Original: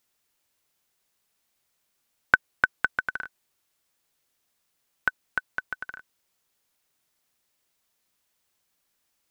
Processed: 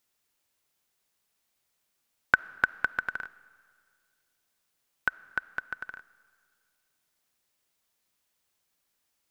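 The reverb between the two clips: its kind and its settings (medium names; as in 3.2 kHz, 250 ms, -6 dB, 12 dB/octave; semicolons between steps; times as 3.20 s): algorithmic reverb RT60 2 s, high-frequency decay 0.95×, pre-delay 10 ms, DRR 19.5 dB; trim -2.5 dB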